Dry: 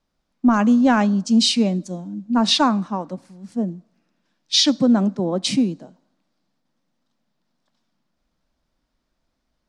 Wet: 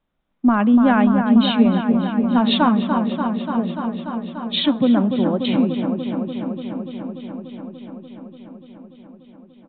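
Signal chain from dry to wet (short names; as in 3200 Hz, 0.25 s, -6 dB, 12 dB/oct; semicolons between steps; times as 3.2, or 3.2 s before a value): downsampling 8000 Hz; dark delay 0.292 s, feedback 80%, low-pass 1900 Hz, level -6 dB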